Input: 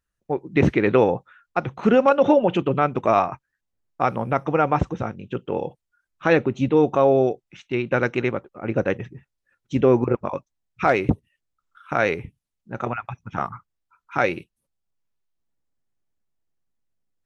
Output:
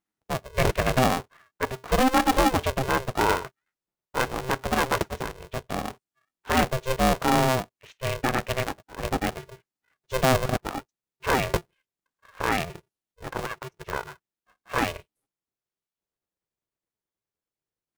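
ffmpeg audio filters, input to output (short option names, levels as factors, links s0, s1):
-af "highpass=f=56:p=1,atempo=0.96,aeval=exprs='val(0)*sgn(sin(2*PI*260*n/s))':c=same,volume=0.596"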